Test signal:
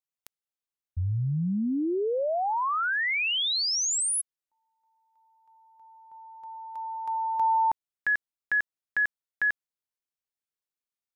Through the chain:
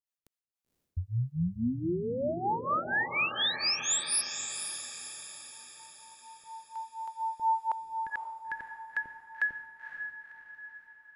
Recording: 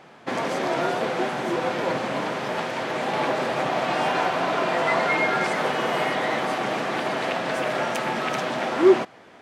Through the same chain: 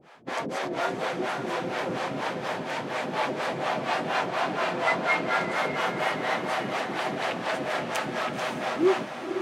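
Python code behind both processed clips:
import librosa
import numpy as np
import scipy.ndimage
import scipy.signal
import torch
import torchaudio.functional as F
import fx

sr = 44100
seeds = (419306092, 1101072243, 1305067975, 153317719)

p1 = fx.harmonic_tremolo(x, sr, hz=4.2, depth_pct=100, crossover_hz=470.0)
y = p1 + fx.echo_diffused(p1, sr, ms=517, feedback_pct=50, wet_db=-7.0, dry=0)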